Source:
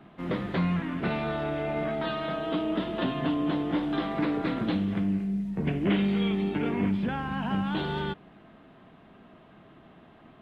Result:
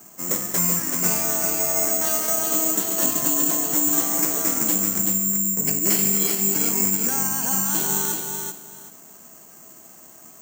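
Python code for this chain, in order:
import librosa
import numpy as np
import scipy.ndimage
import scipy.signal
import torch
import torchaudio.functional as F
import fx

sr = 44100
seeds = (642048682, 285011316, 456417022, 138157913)

p1 = fx.highpass(x, sr, hz=110.0, slope=6)
p2 = fx.low_shelf(p1, sr, hz=240.0, db=-6.5)
p3 = p2 + fx.echo_feedback(p2, sr, ms=381, feedback_pct=21, wet_db=-5, dry=0)
p4 = (np.kron(scipy.signal.resample_poly(p3, 1, 6), np.eye(6)[0]) * 6)[:len(p3)]
y = F.gain(torch.from_numpy(p4), 1.0).numpy()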